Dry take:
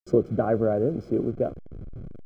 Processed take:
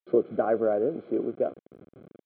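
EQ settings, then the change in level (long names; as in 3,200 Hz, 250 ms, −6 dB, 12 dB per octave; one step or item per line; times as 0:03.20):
high-pass filter 320 Hz 12 dB per octave
Butterworth low-pass 4,000 Hz 96 dB per octave
0.0 dB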